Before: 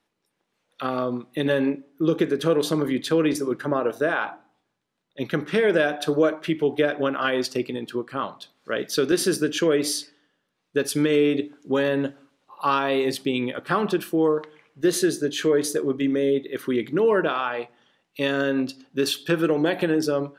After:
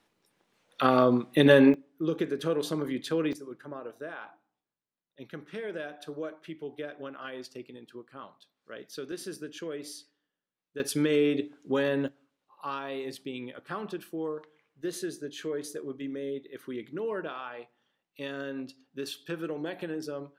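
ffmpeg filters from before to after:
-af "asetnsamples=n=441:p=0,asendcmd='1.74 volume volume -8dB;3.33 volume volume -17dB;10.8 volume volume -5dB;12.08 volume volume -13.5dB',volume=4dB"

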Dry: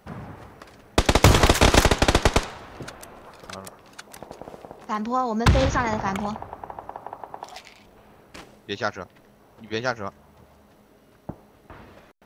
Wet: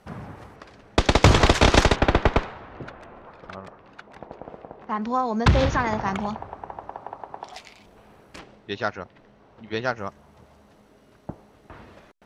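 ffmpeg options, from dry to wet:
-af "asetnsamples=n=441:p=0,asendcmd='0.56 lowpass f 5900;1.96 lowpass f 2400;5.02 lowpass f 5500;7.53 lowpass f 11000;8.39 lowpass f 4200;9.98 lowpass f 9400',lowpass=11k"

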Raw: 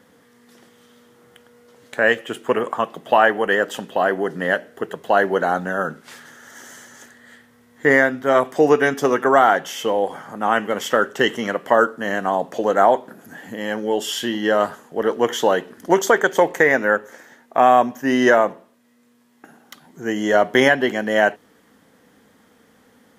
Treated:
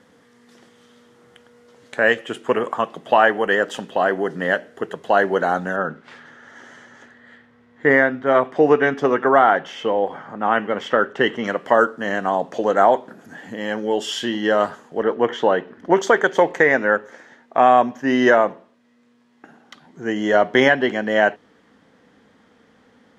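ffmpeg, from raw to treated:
-af "asetnsamples=n=441:p=0,asendcmd='5.76 lowpass f 3000;11.44 lowpass f 6600;15.02 lowpass f 2600;15.97 lowpass f 4900',lowpass=8k"

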